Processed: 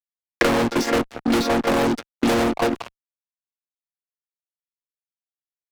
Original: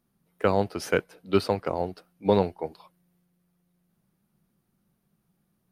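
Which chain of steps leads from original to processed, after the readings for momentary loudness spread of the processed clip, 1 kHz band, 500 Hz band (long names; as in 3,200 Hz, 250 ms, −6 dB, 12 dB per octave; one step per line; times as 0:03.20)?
4 LU, +6.5 dB, +3.0 dB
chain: channel vocoder with a chord as carrier minor triad, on A#3
fuzz pedal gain 42 dB, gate −51 dBFS
multiband upward and downward compressor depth 100%
level −4.5 dB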